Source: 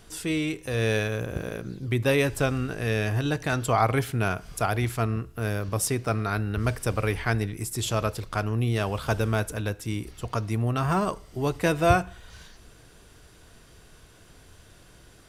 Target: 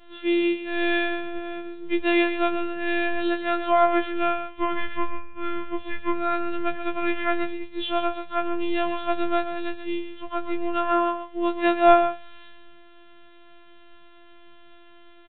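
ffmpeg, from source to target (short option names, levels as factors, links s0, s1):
-filter_complex "[0:a]aresample=8000,aresample=44100,asplit=2[s0][s1];[s1]aecho=0:1:133:0.335[s2];[s0][s2]amix=inputs=2:normalize=0,asettb=1/sr,asplit=3[s3][s4][s5];[s3]atrim=end=4.494[s6];[s4]atrim=start=4.49:end=6.13,asetpts=PTS-STARTPTS,afade=t=in:d=0.004:c=qsin,afade=t=out:st=1.636:d=0.004:c=qsin,afreqshift=-230[s7];[s5]atrim=start=6.126[s8];[s6][s7]acrossfade=d=0.004:c1=hsin:c2=qsin[s9];[s9][s8]acrossfade=d=0.004:c1=qsin:c2=hsin,afftfilt=real='hypot(re,im)*cos(PI*b)':imag='0':win_size=512:overlap=0.75,asplit=2[s10][s11];[s11]aecho=0:1:68|136:0.0841|0.0135[s12];[s10][s12]amix=inputs=2:normalize=0,afftfilt=real='re*2.83*eq(mod(b,8),0)':imag='im*2.83*eq(mod(b,8),0)':win_size=2048:overlap=0.75"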